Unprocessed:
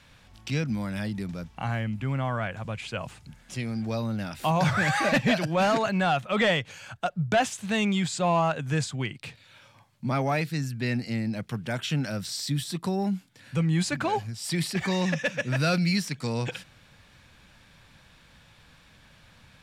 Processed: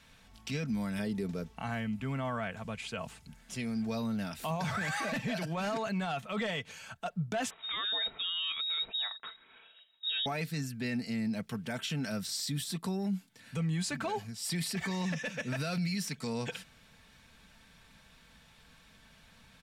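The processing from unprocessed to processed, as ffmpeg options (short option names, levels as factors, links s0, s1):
-filter_complex "[0:a]asettb=1/sr,asplit=3[s0][s1][s2];[s0]atrim=end=0.994[s3];[s1]atrim=start=0.99:end=1.55,asetpts=PTS-STARTPTS,afade=t=in:d=0.004:c=qsin,afade=t=out:st=0.556:d=0.004:c=qsin,equalizer=f=410:t=o:w=0.7:g=11.5[s4];[s2]atrim=start=1.546[s5];[s3][s4]acrossfade=d=0.004:c1=hsin:c2=qsin[s6];[s6][s5]acrossfade=d=0.004:c1=qsin:c2=hsin,asettb=1/sr,asplit=3[s7][s8][s9];[s7]atrim=end=7.504[s10];[s8]atrim=start=7.5:end=10.26,asetpts=PTS-STARTPTS,afade=t=in:d=0.004:c=qsin,afade=t=out:st=2.756:d=0.004:c=qsin,lowpass=f=3300:t=q:w=0.5098,lowpass=f=3300:t=q:w=0.6013,lowpass=f=3300:t=q:w=0.9,lowpass=f=3300:t=q:w=2.563,afreqshift=-3900[s11];[s9]atrim=start=10.256[s12];[s10][s11]acrossfade=d=0.004:c1=hsin:c2=qsin[s13];[s13][s12]acrossfade=d=0.004:c1=qsin:c2=hsin,highshelf=f=8000:g=5.5,aecho=1:1:4.5:0.46,alimiter=limit=0.0841:level=0:latency=1:release=29,volume=0.562"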